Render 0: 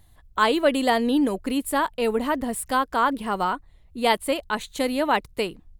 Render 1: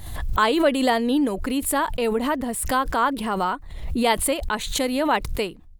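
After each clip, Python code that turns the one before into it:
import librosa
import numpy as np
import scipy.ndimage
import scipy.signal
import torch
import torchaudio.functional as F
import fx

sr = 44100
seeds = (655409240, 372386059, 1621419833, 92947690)

y = fx.pre_swell(x, sr, db_per_s=49.0)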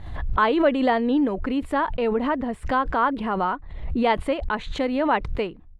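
y = scipy.signal.sosfilt(scipy.signal.butter(2, 2300.0, 'lowpass', fs=sr, output='sos'), x)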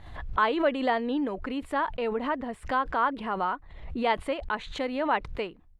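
y = fx.low_shelf(x, sr, hz=390.0, db=-7.5)
y = y * librosa.db_to_amplitude(-3.0)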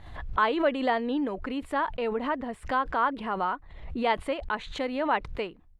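y = x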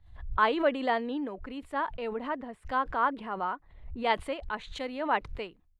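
y = fx.band_widen(x, sr, depth_pct=70)
y = y * librosa.db_to_amplitude(-3.0)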